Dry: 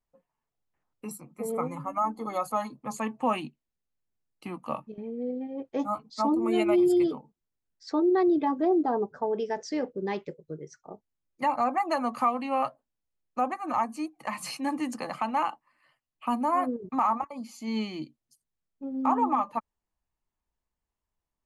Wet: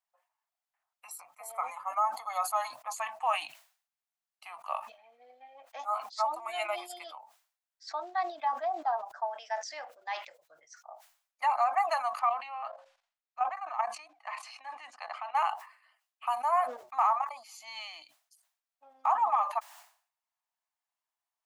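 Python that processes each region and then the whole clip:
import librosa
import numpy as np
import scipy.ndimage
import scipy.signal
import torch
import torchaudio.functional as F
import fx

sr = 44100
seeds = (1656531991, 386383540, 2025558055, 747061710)

y = fx.chain(x, sr, fx.lowpass(hz=4400.0, slope=12),
    fx.hum_notches(base_hz=60, count=9),
    fx.level_steps(step_db=12), at=(12.19, 15.35))
y = scipy.signal.sosfilt(scipy.signal.ellip(4, 1.0, 40, 670.0, 'highpass', fs=sr, output='sos'), y)
y = fx.sustainer(y, sr, db_per_s=120.0)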